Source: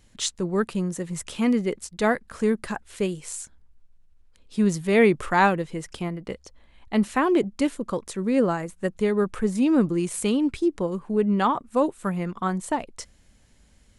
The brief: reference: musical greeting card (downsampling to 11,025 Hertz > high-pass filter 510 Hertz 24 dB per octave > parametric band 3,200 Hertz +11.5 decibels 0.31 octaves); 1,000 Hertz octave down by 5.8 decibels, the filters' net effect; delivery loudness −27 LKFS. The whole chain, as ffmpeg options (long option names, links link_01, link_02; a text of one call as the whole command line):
ffmpeg -i in.wav -af "equalizer=frequency=1000:width_type=o:gain=-7.5,aresample=11025,aresample=44100,highpass=frequency=510:width=0.5412,highpass=frequency=510:width=1.3066,equalizer=frequency=3200:width_type=o:width=0.31:gain=11.5,volume=5dB" out.wav